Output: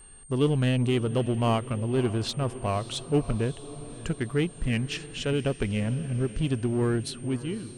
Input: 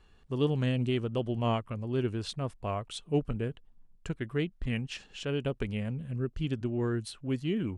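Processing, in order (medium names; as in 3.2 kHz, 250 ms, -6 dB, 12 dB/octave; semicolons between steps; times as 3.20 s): fade out at the end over 0.70 s; in parallel at -3.5 dB: hard clipper -33 dBFS, distortion -6 dB; on the sum: echo that smears into a reverb 578 ms, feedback 54%, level -15.5 dB; whistle 8.7 kHz -52 dBFS; trim +2.5 dB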